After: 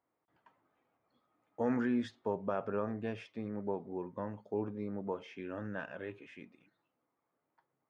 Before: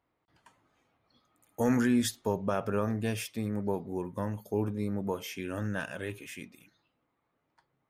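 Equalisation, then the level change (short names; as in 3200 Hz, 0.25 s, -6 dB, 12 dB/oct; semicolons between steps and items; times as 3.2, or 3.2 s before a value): HPF 380 Hz 6 dB/oct; tape spacing loss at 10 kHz 39 dB; 0.0 dB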